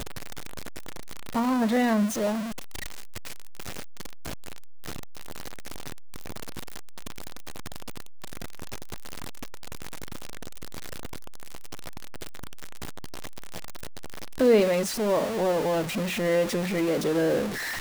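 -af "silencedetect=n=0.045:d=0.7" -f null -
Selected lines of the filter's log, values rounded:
silence_start: 0.00
silence_end: 1.35 | silence_duration: 1.35
silence_start: 2.40
silence_end: 14.40 | silence_duration: 12.00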